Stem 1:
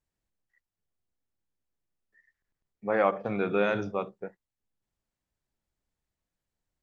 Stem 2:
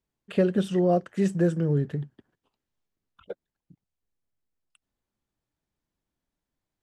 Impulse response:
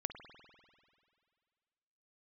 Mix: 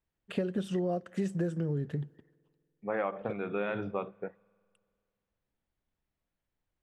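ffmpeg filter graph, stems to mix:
-filter_complex "[0:a]lowpass=f=3500:w=0.5412,lowpass=f=3500:w=1.3066,volume=0.944,asplit=2[s0][s1];[s1]volume=0.0708[s2];[1:a]agate=range=0.398:threshold=0.00355:ratio=16:detection=peak,volume=0.75,asplit=3[s3][s4][s5];[s4]volume=0.075[s6];[s5]apad=whole_len=300967[s7];[s0][s7]sidechaincompress=threshold=0.00891:ratio=8:attack=16:release=1050[s8];[2:a]atrim=start_sample=2205[s9];[s2][s6]amix=inputs=2:normalize=0[s10];[s10][s9]afir=irnorm=-1:irlink=0[s11];[s8][s3][s11]amix=inputs=3:normalize=0,acompressor=threshold=0.0398:ratio=6"

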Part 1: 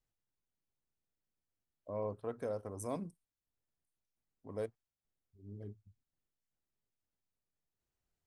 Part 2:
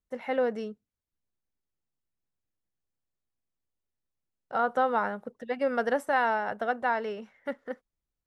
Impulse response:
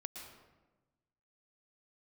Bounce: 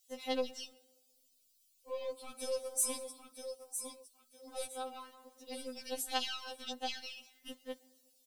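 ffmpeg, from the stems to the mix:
-filter_complex "[0:a]highpass=300,bandreject=f=6500:w=26,deesser=1,volume=0.891,asplit=4[s0][s1][s2][s3];[s1]volume=0.531[s4];[s2]volume=0.473[s5];[1:a]volume=0.282,asplit=2[s6][s7];[s7]volume=0.158[s8];[s3]apad=whole_len=364651[s9];[s6][s9]sidechaincompress=threshold=0.002:ratio=8:attack=11:release=962[s10];[2:a]atrim=start_sample=2205[s11];[s4][s8]amix=inputs=2:normalize=0[s12];[s12][s11]afir=irnorm=-1:irlink=0[s13];[s5]aecho=0:1:959|1918|2877|3836:1|0.24|0.0576|0.0138[s14];[s0][s10][s13][s14]amix=inputs=4:normalize=0,aeval=exprs='(tanh(44.7*val(0)+0.3)-tanh(0.3))/44.7':c=same,aexciter=amount=15.7:drive=3.3:freq=2700,afftfilt=real='re*3.46*eq(mod(b,12),0)':imag='im*3.46*eq(mod(b,12),0)':win_size=2048:overlap=0.75"

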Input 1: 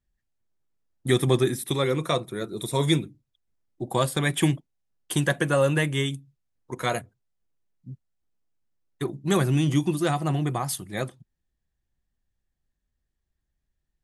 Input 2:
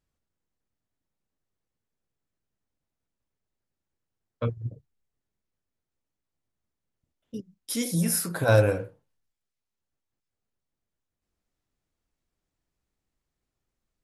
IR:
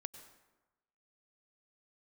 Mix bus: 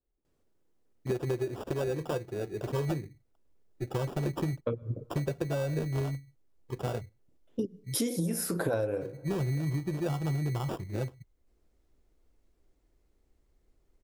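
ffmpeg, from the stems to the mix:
-filter_complex "[0:a]aecho=1:1:2.2:0.33,asubboost=boost=11:cutoff=100,acrusher=samples=21:mix=1:aa=0.000001,volume=0.266,asplit=2[s0][s1];[1:a]adelay=250,volume=1.26,asplit=2[s2][s3];[s3]volume=0.133[s4];[s1]apad=whole_len=629918[s5];[s2][s5]sidechaincompress=threshold=0.0224:ratio=8:attack=30:release=1270[s6];[2:a]atrim=start_sample=2205[s7];[s4][s7]afir=irnorm=-1:irlink=0[s8];[s0][s6][s8]amix=inputs=3:normalize=0,equalizer=f=390:w=0.81:g=12,acompressor=threshold=0.0447:ratio=16"

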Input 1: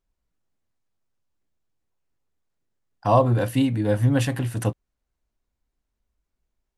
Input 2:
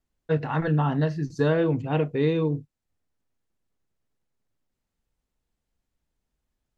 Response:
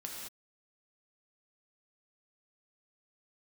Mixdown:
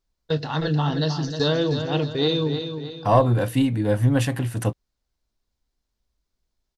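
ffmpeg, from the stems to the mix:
-filter_complex "[0:a]aeval=exprs='0.596*(cos(1*acos(clip(val(0)/0.596,-1,1)))-cos(1*PI/2))+0.0668*(cos(2*acos(clip(val(0)/0.596,-1,1)))-cos(2*PI/2))':c=same,volume=1.06[s0];[1:a]lowpass=f=4900:w=0.5412,lowpass=f=4900:w=1.3066,agate=range=0.2:threshold=0.0251:ratio=16:detection=peak,aexciter=amount=13.4:drive=6.3:freq=3600,volume=1,asplit=2[s1][s2];[s2]volume=0.398,aecho=0:1:311|622|933|1244|1555|1866:1|0.44|0.194|0.0852|0.0375|0.0165[s3];[s0][s1][s3]amix=inputs=3:normalize=0"

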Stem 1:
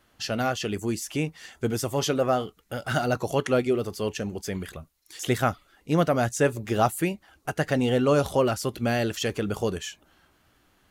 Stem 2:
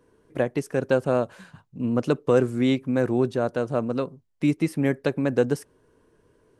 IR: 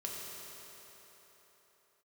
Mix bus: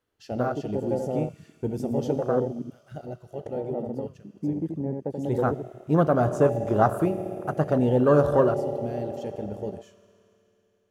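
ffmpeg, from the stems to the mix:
-filter_complex "[0:a]acrusher=bits=9:mode=log:mix=0:aa=0.000001,volume=2.24,afade=t=out:st=2.01:d=0.46:silence=0.398107,afade=t=in:st=5.09:d=0.66:silence=0.251189,afade=t=out:st=8.39:d=0.23:silence=0.398107,asplit=2[s0][s1];[s1]volume=0.596[s2];[1:a]lowpass=1100,volume=0.473,asplit=3[s3][s4][s5];[s3]atrim=end=2.62,asetpts=PTS-STARTPTS,afade=t=out:st=2.616:d=0.004:c=hsin[s6];[s4]atrim=start=2.62:end=3.46,asetpts=PTS-STARTPTS,volume=0[s7];[s5]atrim=start=3.46,asetpts=PTS-STARTPTS,afade=t=in:d=0.004:c=hsin[s8];[s6][s7][s8]concat=n=3:v=0:a=1,asplit=2[s9][s10];[s10]volume=0.562[s11];[2:a]atrim=start_sample=2205[s12];[s2][s12]afir=irnorm=-1:irlink=0[s13];[s11]aecho=0:1:81:1[s14];[s0][s9][s13][s14]amix=inputs=4:normalize=0,afwtdn=0.0562"

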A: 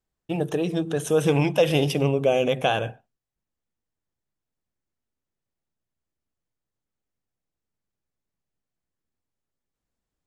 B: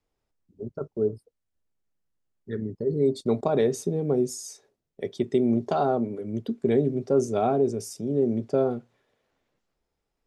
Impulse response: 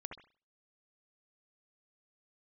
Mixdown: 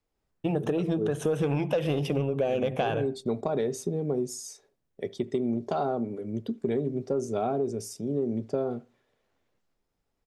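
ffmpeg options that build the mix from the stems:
-filter_complex "[0:a]highshelf=f=3200:g=-11.5,adelay=150,volume=1.33,asplit=2[s0][s1];[s1]volume=0.106[s2];[1:a]volume=0.75,asplit=2[s3][s4];[s4]volume=0.158[s5];[2:a]atrim=start_sample=2205[s6];[s2][s5]amix=inputs=2:normalize=0[s7];[s7][s6]afir=irnorm=-1:irlink=0[s8];[s0][s3][s8]amix=inputs=3:normalize=0,asoftclip=type=tanh:threshold=0.398,acompressor=threshold=0.0631:ratio=5"

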